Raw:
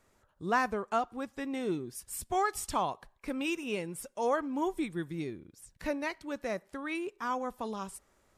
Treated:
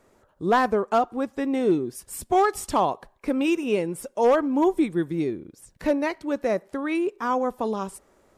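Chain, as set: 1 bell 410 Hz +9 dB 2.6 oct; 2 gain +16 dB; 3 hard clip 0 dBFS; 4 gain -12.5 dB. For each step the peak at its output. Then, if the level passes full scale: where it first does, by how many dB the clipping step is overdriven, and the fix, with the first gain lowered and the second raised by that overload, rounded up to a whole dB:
-10.5, +5.5, 0.0, -12.5 dBFS; step 2, 5.5 dB; step 2 +10 dB, step 4 -6.5 dB

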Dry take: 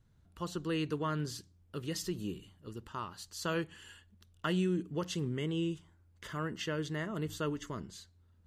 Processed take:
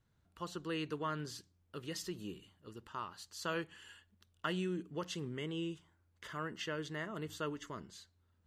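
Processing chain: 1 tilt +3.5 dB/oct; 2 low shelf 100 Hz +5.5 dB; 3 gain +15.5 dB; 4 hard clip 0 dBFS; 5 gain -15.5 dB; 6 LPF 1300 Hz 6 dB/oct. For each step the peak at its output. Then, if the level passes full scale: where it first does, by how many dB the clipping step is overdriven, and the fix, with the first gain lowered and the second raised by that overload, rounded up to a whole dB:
-17.5, -17.5, -2.0, -2.0, -17.5, -22.0 dBFS; no overload

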